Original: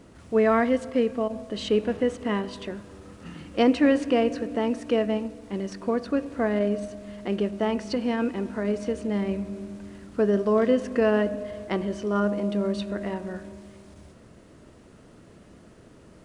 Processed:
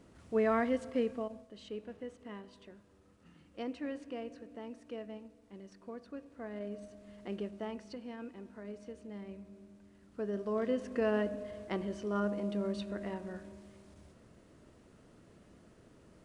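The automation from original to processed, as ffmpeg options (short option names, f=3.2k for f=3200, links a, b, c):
-af "volume=8.5dB,afade=t=out:st=1.08:d=0.4:silence=0.281838,afade=t=in:st=6.38:d=0.93:silence=0.421697,afade=t=out:st=7.31:d=0.71:silence=0.473151,afade=t=in:st=9.92:d=1.26:silence=0.316228"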